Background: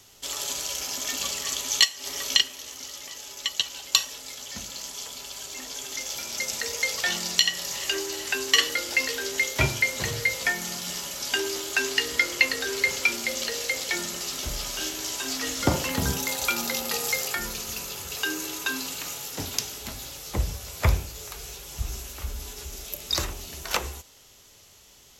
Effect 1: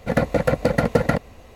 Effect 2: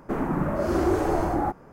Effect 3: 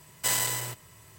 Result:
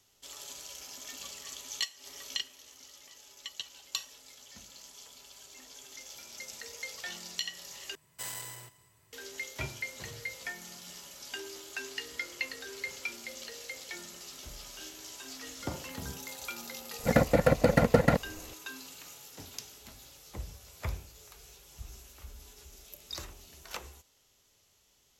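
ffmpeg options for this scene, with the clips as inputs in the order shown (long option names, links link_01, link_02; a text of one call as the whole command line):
ffmpeg -i bed.wav -i cue0.wav -i cue1.wav -i cue2.wav -filter_complex "[0:a]volume=-14.5dB[link_01];[3:a]aecho=1:1:181|362|543:0.0891|0.0357|0.0143[link_02];[link_01]asplit=2[link_03][link_04];[link_03]atrim=end=7.954[link_05];[link_02]atrim=end=1.18,asetpts=PTS-STARTPTS,volume=-13.5dB[link_06];[link_04]atrim=start=9.126[link_07];[1:a]atrim=end=1.55,asetpts=PTS-STARTPTS,volume=-4dB,afade=type=in:duration=0.004:curve=hsin,afade=type=out:start_time=1.546:duration=0.004:curve=hsin,adelay=16990[link_08];[link_05][link_06]acrossfade=duration=0.004:curve1=hsin:curve2=hsin[link_09];[link_09][link_07]acrossfade=duration=0.004:curve1=hsin:curve2=hsin[link_10];[link_10][link_08]amix=inputs=2:normalize=0" out.wav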